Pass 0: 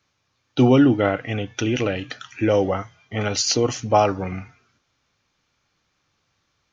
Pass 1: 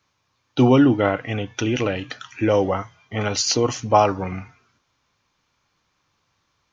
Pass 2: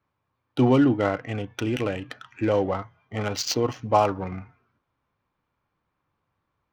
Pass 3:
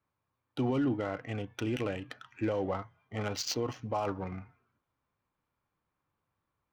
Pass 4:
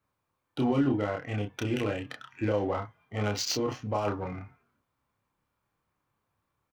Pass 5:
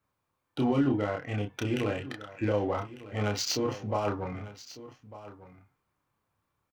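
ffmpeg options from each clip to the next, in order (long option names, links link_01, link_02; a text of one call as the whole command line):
ffmpeg -i in.wav -af "equalizer=frequency=1000:width_type=o:width=0.32:gain=7" out.wav
ffmpeg -i in.wav -af "adynamicsmooth=sensitivity=2:basefreq=1800,volume=-4dB" out.wav
ffmpeg -i in.wav -af "alimiter=limit=-16dB:level=0:latency=1:release=21,volume=-6.5dB" out.wav
ffmpeg -i in.wav -filter_complex "[0:a]asplit=2[link_01][link_02];[link_02]adelay=29,volume=-2.5dB[link_03];[link_01][link_03]amix=inputs=2:normalize=0,volume=2dB" out.wav
ffmpeg -i in.wav -af "aecho=1:1:1199:0.15" out.wav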